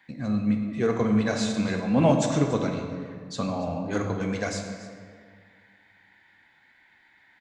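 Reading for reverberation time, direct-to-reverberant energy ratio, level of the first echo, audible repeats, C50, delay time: 1.9 s, 3.0 dB, −17.5 dB, 1, 5.0 dB, 284 ms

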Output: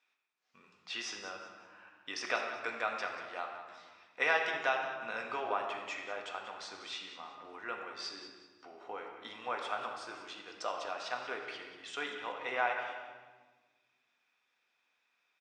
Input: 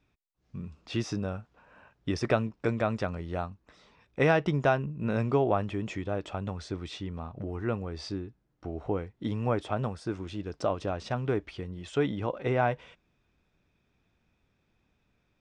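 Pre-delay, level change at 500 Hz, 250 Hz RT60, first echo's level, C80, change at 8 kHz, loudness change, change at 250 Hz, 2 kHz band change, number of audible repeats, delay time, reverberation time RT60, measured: 4 ms, −10.5 dB, 2.2 s, −12.5 dB, 5.0 dB, 0.0 dB, −6.5 dB, −20.5 dB, +1.5 dB, 2, 187 ms, 1.4 s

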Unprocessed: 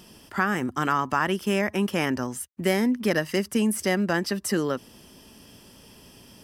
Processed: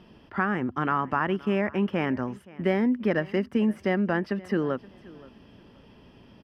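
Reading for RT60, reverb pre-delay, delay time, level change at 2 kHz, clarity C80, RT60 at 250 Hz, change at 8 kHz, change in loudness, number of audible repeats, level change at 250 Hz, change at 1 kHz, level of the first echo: no reverb audible, no reverb audible, 524 ms, −3.5 dB, no reverb audible, no reverb audible, below −25 dB, −1.5 dB, 2, −0.5 dB, −2.0 dB, −21.5 dB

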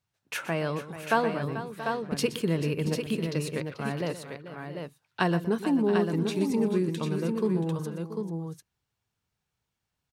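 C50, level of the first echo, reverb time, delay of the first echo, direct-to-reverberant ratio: no reverb audible, −14.0 dB, no reverb audible, 122 ms, no reverb audible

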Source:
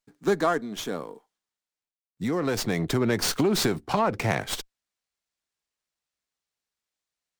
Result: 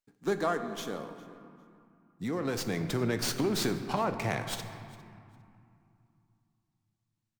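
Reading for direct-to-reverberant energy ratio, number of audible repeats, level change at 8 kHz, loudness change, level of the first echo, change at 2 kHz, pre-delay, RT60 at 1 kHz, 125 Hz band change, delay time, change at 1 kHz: 8.0 dB, 1, −6.0 dB, −6.0 dB, −22.0 dB, −6.0 dB, 15 ms, 2.8 s, −5.0 dB, 404 ms, −5.5 dB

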